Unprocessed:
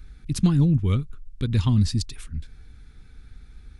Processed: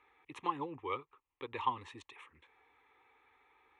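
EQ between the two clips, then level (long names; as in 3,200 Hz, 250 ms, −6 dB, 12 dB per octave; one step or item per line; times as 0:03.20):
four-pole ladder band-pass 1,000 Hz, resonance 40%
phaser with its sweep stopped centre 990 Hz, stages 8
+15.0 dB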